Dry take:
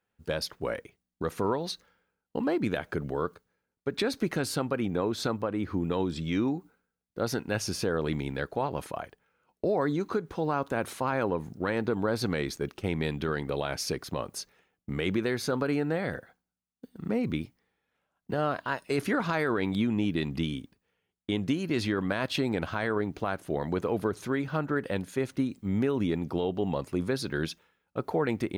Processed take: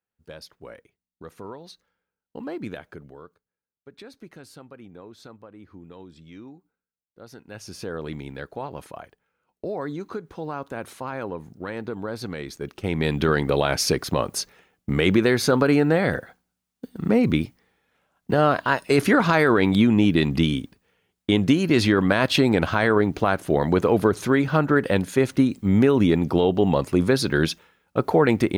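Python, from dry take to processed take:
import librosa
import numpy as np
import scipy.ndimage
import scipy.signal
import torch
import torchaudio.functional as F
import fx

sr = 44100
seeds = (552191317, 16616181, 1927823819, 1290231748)

y = fx.gain(x, sr, db=fx.line((1.72, -10.0), (2.68, -4.0), (3.26, -15.0), (7.28, -15.0), (7.91, -3.0), (12.46, -3.0), (13.22, 10.0)))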